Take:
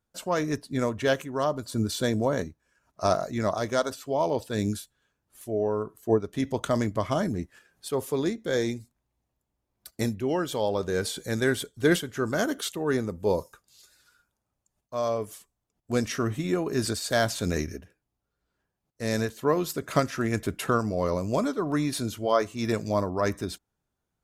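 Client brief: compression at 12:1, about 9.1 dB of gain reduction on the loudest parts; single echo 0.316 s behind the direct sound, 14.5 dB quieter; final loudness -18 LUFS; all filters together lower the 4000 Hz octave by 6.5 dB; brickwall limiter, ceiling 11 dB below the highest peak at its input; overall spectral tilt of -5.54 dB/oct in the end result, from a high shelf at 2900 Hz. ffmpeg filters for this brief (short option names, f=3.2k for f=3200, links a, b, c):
-af "highshelf=f=2.9k:g=-4,equalizer=f=4k:t=o:g=-5,acompressor=threshold=-26dB:ratio=12,alimiter=level_in=2.5dB:limit=-24dB:level=0:latency=1,volume=-2.5dB,aecho=1:1:316:0.188,volume=18.5dB"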